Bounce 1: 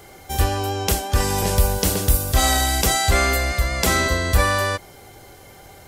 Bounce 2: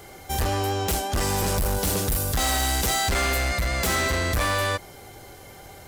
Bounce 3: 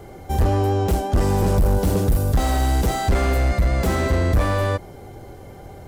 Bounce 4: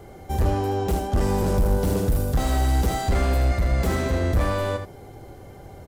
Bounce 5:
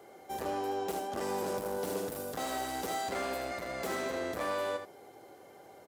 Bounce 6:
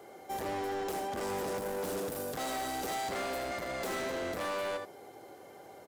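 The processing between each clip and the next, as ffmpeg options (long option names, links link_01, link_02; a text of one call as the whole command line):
ffmpeg -i in.wav -af "volume=21dB,asoftclip=hard,volume=-21dB" out.wav
ffmpeg -i in.wav -af "tiltshelf=frequency=1100:gain=8.5" out.wav
ffmpeg -i in.wav -af "aecho=1:1:77:0.376,volume=-3.5dB" out.wav
ffmpeg -i in.wav -af "highpass=370,volume=-6.5dB" out.wav
ffmpeg -i in.wav -af "asoftclip=type=hard:threshold=-35dB,volume=2.5dB" out.wav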